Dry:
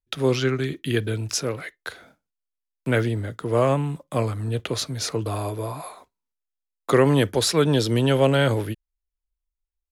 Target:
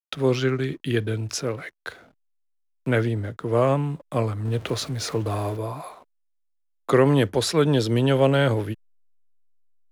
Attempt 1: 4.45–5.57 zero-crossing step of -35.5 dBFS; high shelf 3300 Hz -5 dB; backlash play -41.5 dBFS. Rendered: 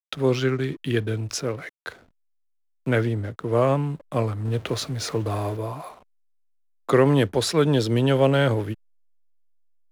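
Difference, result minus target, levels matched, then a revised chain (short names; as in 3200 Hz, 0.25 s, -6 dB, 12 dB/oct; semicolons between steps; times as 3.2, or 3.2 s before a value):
backlash: distortion +7 dB
4.45–5.57 zero-crossing step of -35.5 dBFS; high shelf 3300 Hz -5 dB; backlash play -49.5 dBFS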